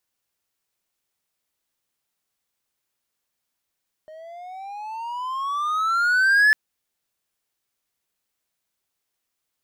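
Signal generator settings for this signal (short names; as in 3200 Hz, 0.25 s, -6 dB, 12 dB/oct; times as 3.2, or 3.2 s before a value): gliding synth tone triangle, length 2.45 s, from 617 Hz, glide +18 st, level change +27 dB, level -10 dB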